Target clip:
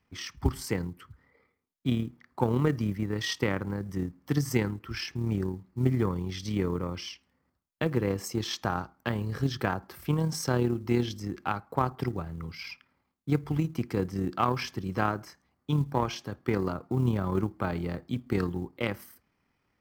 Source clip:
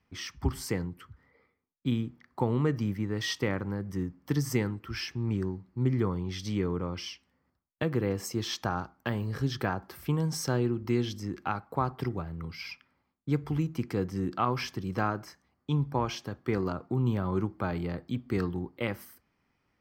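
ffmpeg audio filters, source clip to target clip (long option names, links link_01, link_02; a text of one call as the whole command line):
ffmpeg -i in.wav -af "tremolo=f=37:d=0.333,aeval=exprs='0.2*(cos(1*acos(clip(val(0)/0.2,-1,1)))-cos(1*PI/2))+0.0126*(cos(3*acos(clip(val(0)/0.2,-1,1)))-cos(3*PI/2))+0.00112*(cos(5*acos(clip(val(0)/0.2,-1,1)))-cos(5*PI/2))+0.00355*(cos(7*acos(clip(val(0)/0.2,-1,1)))-cos(7*PI/2))':channel_layout=same,acrusher=bits=9:mode=log:mix=0:aa=0.000001,volume=4.5dB" out.wav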